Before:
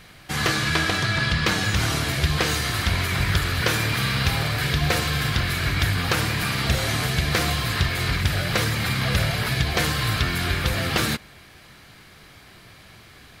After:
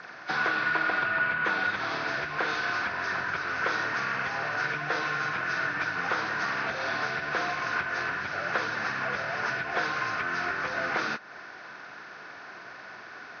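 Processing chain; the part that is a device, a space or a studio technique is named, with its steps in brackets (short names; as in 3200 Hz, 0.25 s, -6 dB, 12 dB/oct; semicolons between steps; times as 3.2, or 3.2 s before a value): 4.63–6.08 comb 6.4 ms, depth 43%; hearing aid with frequency lowering (nonlinear frequency compression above 1100 Hz 1.5:1; compressor 3:1, threshold -33 dBFS, peak gain reduction 13 dB; speaker cabinet 330–6200 Hz, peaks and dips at 700 Hz +4 dB, 1000 Hz +5 dB, 1500 Hz +8 dB, 2900 Hz -9 dB, 5800 Hz -4 dB); gain +3.5 dB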